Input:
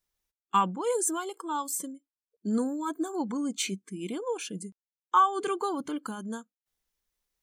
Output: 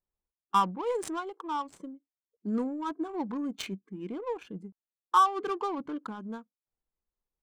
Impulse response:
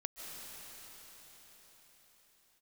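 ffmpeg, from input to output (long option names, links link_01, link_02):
-af "equalizer=frequency=1000:width=2:gain=3,adynamicsmooth=sensitivity=4:basefreq=1000,volume=-2.5dB"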